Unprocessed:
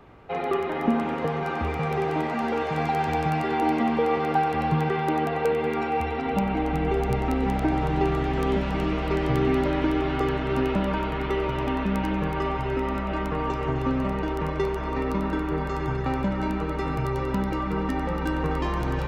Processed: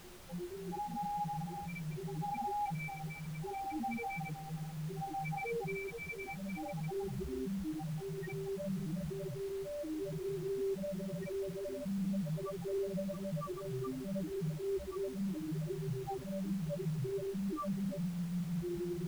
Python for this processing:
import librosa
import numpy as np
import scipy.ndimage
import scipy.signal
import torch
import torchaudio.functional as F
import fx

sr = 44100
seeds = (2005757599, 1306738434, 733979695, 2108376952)

y = fx.stiff_resonator(x, sr, f0_hz=170.0, decay_s=0.29, stiffness=0.03)
y = fx.over_compress(y, sr, threshold_db=-43.0, ratio=-1.0)
y = fx.rotary_switch(y, sr, hz=0.7, then_hz=6.7, switch_at_s=11.87)
y = fx.spec_topn(y, sr, count=2)
y = fx.dmg_noise_colour(y, sr, seeds[0], colour='pink', level_db=-66.0)
y = y * 10.0 ** (11.5 / 20.0)